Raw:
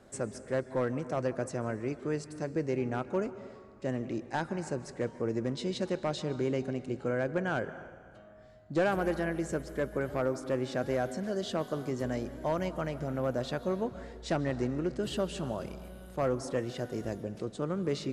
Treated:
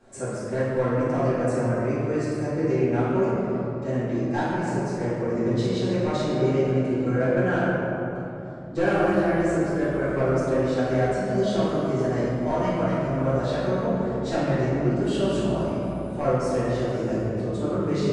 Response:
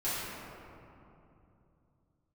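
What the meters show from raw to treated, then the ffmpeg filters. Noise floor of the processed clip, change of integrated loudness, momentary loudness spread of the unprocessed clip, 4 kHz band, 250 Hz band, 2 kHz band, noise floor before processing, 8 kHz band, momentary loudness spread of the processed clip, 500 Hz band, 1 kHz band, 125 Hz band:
-32 dBFS, +9.0 dB, 7 LU, +4.5 dB, +10.0 dB, +7.5 dB, -53 dBFS, +4.0 dB, 5 LU, +9.0 dB, +9.0 dB, +11.0 dB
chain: -filter_complex "[1:a]atrim=start_sample=2205[a];[0:a][a]afir=irnorm=-1:irlink=0,aresample=22050,aresample=44100"

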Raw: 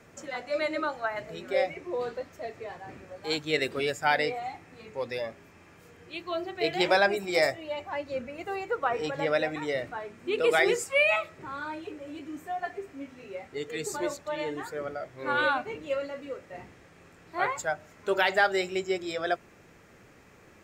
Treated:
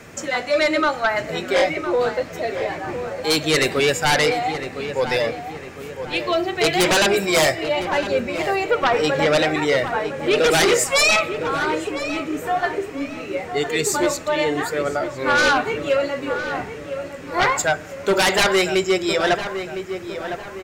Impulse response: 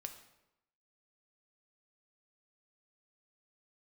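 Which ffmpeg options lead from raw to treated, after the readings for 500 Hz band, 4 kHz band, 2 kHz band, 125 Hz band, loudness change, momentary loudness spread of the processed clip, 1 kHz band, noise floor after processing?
+9.5 dB, +13.0 dB, +9.0 dB, +14.0 dB, +9.5 dB, 12 LU, +9.5 dB, -35 dBFS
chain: -filter_complex "[0:a]asplit=2[a][b];[b]highpass=1.3k[c];[1:a]atrim=start_sample=2205[d];[c][d]afir=irnorm=-1:irlink=0,volume=-4.5dB[e];[a][e]amix=inputs=2:normalize=0,aeval=exprs='0.335*sin(PI/2*3.98*val(0)/0.335)':c=same,asplit=2[f][g];[g]adelay=1008,lowpass=f=2.1k:p=1,volume=-9dB,asplit=2[h][i];[i]adelay=1008,lowpass=f=2.1k:p=1,volume=0.48,asplit=2[j][k];[k]adelay=1008,lowpass=f=2.1k:p=1,volume=0.48,asplit=2[l][m];[m]adelay=1008,lowpass=f=2.1k:p=1,volume=0.48,asplit=2[n][o];[o]adelay=1008,lowpass=f=2.1k:p=1,volume=0.48[p];[f][h][j][l][n][p]amix=inputs=6:normalize=0,volume=-3dB"

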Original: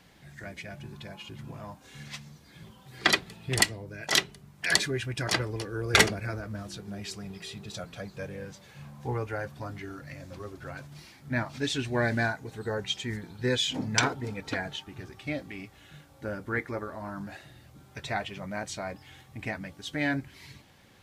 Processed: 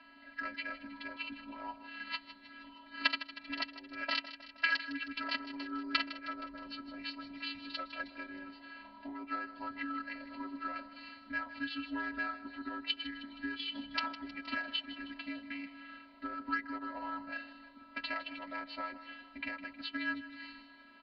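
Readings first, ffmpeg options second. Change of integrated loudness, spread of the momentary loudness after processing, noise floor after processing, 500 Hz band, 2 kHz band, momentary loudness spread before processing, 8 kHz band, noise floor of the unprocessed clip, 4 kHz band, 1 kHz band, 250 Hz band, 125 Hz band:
-9.0 dB, 14 LU, -58 dBFS, -17.0 dB, -6.0 dB, 19 LU, under -35 dB, -56 dBFS, -8.0 dB, -4.5 dB, -6.5 dB, under -30 dB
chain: -af "acompressor=threshold=-38dB:ratio=10,equalizer=f=180:t=o:w=0.32:g=-14,afftfilt=real='hypot(re,im)*cos(PI*b)':imag='0':win_size=512:overlap=0.75,adynamicsmooth=sensitivity=5:basefreq=1.4k,highpass=f=110:p=1,tiltshelf=f=1.3k:g=-9,aecho=1:1:6.5:0.75,aecho=1:1:157|314|471|628|785|942:0.2|0.118|0.0695|0.041|0.0242|0.0143,aresample=11025,aresample=44100,afreqshift=-64,bandreject=f=3.5k:w=6.8,volume=10.5dB"

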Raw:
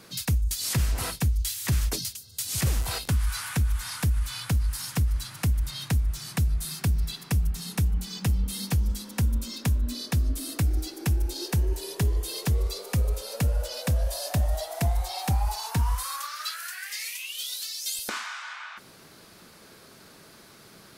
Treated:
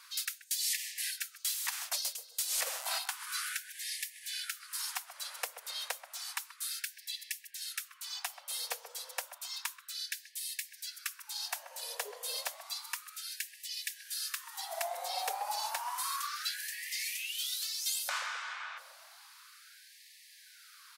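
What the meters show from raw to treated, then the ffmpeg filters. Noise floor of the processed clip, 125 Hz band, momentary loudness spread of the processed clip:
-58 dBFS, under -40 dB, 9 LU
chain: -filter_complex "[0:a]asplit=2[a][b];[b]adelay=132,lowpass=f=810:p=1,volume=-7dB,asplit=2[c][d];[d]adelay=132,lowpass=f=810:p=1,volume=0.42,asplit=2[e][f];[f]adelay=132,lowpass=f=810:p=1,volume=0.42,asplit=2[g][h];[h]adelay=132,lowpass=f=810:p=1,volume=0.42,asplit=2[i][j];[j]adelay=132,lowpass=f=810:p=1,volume=0.42[k];[a][c][e][g][i][k]amix=inputs=6:normalize=0,afftfilt=real='re*gte(b*sr/1024,430*pow(1700/430,0.5+0.5*sin(2*PI*0.31*pts/sr)))':imag='im*gte(b*sr/1024,430*pow(1700/430,0.5+0.5*sin(2*PI*0.31*pts/sr)))':win_size=1024:overlap=0.75,volume=-2.5dB"

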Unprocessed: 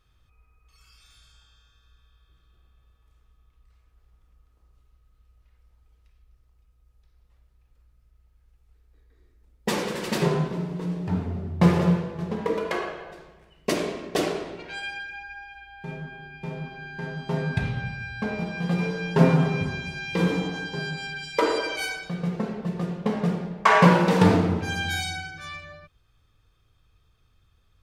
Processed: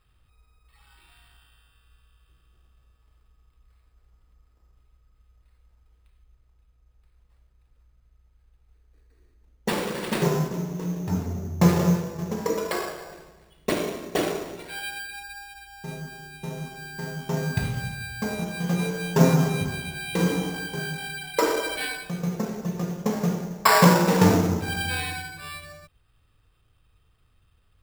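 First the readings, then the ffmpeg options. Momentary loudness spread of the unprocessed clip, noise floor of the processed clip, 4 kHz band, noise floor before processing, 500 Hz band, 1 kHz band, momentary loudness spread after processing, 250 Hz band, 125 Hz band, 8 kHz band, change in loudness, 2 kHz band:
18 LU, -64 dBFS, +1.0 dB, -64 dBFS, 0.0 dB, -0.5 dB, 18 LU, 0.0 dB, 0.0 dB, +6.5 dB, 0.0 dB, -1.0 dB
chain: -af "acrusher=samples=7:mix=1:aa=0.000001"

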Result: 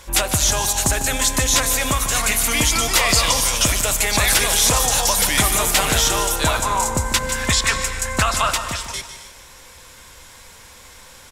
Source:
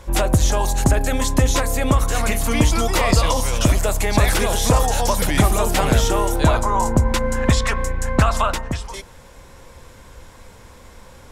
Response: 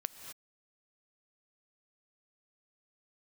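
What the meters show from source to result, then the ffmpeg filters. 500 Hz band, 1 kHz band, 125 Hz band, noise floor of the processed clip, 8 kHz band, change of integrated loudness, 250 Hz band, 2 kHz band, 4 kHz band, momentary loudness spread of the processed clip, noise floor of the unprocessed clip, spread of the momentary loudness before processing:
-4.0 dB, 0.0 dB, -7.0 dB, -44 dBFS, +9.0 dB, +2.0 dB, -6.0 dB, +4.5 dB, +7.5 dB, 6 LU, -44 dBFS, 4 LU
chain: -filter_complex "[0:a]tiltshelf=f=1.2k:g=-8,aecho=1:1:151|302|453|604:0.266|0.117|0.0515|0.0227,asplit=2[a][b];[1:a]atrim=start_sample=2205,asetrate=42336,aresample=44100[c];[b][c]afir=irnorm=-1:irlink=0,volume=3.5dB[d];[a][d]amix=inputs=2:normalize=0,volume=-6.5dB"

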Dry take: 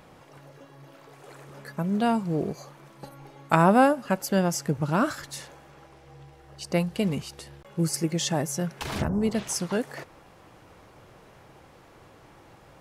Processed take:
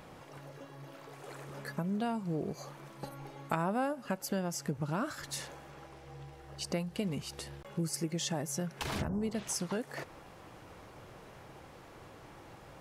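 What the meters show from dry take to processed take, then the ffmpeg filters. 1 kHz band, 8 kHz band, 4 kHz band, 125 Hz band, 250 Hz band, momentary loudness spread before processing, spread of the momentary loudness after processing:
-12.0 dB, -6.5 dB, -6.0 dB, -9.0 dB, -10.0 dB, 20 LU, 18 LU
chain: -af "acompressor=threshold=-34dB:ratio=3"

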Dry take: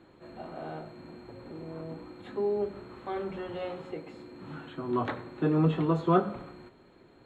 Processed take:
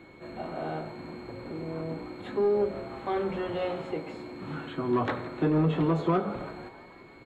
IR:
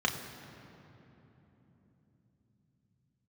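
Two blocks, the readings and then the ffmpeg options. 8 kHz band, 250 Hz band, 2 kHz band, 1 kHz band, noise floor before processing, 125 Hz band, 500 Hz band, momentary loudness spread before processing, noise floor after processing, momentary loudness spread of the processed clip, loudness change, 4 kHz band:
n/a, +1.5 dB, +4.0 dB, +1.0 dB, -58 dBFS, +1.0 dB, +3.0 dB, 20 LU, -51 dBFS, 16 LU, +1.0 dB, +3.5 dB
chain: -filter_complex "[0:a]alimiter=limit=-20.5dB:level=0:latency=1:release=253,aeval=exprs='val(0)+0.000794*sin(2*PI*2200*n/s)':c=same,asoftclip=type=tanh:threshold=-22.5dB,asplit=2[a][b];[b]asplit=6[c][d][e][f][g][h];[c]adelay=165,afreqshift=130,volume=-18dB[i];[d]adelay=330,afreqshift=260,volume=-22.3dB[j];[e]adelay=495,afreqshift=390,volume=-26.6dB[k];[f]adelay=660,afreqshift=520,volume=-30.9dB[l];[g]adelay=825,afreqshift=650,volume=-35.2dB[m];[h]adelay=990,afreqshift=780,volume=-39.5dB[n];[i][j][k][l][m][n]amix=inputs=6:normalize=0[o];[a][o]amix=inputs=2:normalize=0,volume=5.5dB"

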